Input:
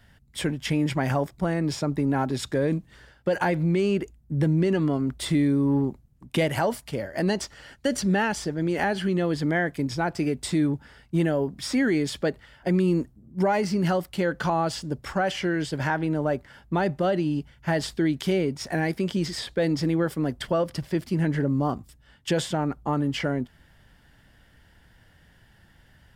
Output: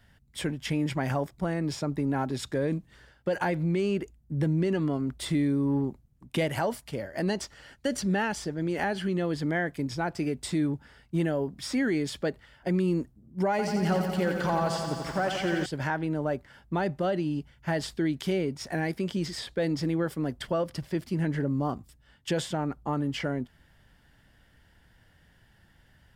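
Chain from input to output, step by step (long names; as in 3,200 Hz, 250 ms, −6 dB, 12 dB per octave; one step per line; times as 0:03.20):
0:13.50–0:15.66: feedback echo at a low word length 87 ms, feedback 80%, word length 9 bits, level −6.5 dB
level −4 dB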